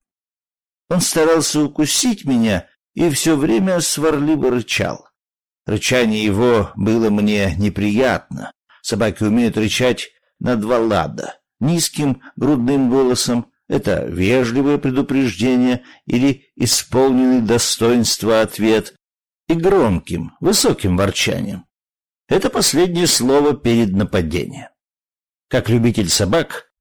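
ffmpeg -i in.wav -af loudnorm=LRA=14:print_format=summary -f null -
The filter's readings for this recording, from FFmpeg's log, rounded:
Input Integrated:    -16.6 LUFS
Input True Peak:      -1.9 dBTP
Input LRA:             2.7 LU
Input Threshold:     -27.0 LUFS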